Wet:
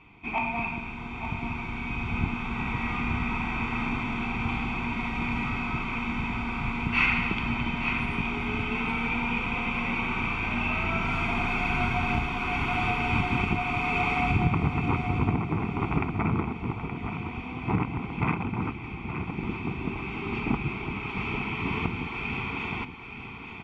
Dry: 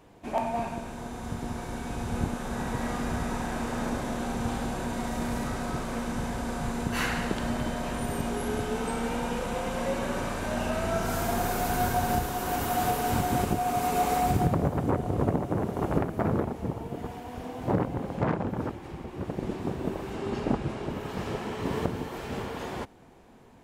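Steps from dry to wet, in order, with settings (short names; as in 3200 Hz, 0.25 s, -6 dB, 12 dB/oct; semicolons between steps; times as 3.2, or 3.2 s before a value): synth low-pass 2600 Hz, resonance Q 11; comb 0.9 ms, depth 100%; feedback echo 0.872 s, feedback 34%, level -9 dB; gain -4 dB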